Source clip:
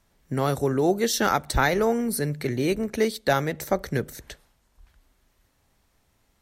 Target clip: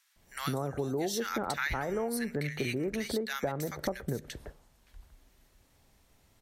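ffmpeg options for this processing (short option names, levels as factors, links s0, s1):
-filter_complex "[0:a]asettb=1/sr,asplit=3[s0][s1][s2];[s0]atrim=end=1.374[s3];[s1]atrim=start=1.37:end=3,asetpts=PTS-STARTPTS,afade=t=in:d=0.004:c=qsin,afade=t=out:st=1.626:d=0.004:c=qsin,equalizer=f=2000:t=o:w=1.4:g=7.5[s4];[s2]atrim=start=2.996[s5];[s3][s4]acrossfade=d=0.004:c1=hsin:c2=qsin[s6];[s6][s5]acrossfade=d=0.004:c1=qsin:c2=hsin,acrossover=split=1300[s7][s8];[s7]adelay=160[s9];[s9][s8]amix=inputs=2:normalize=0,acompressor=threshold=0.0251:ratio=6,volume=1.26"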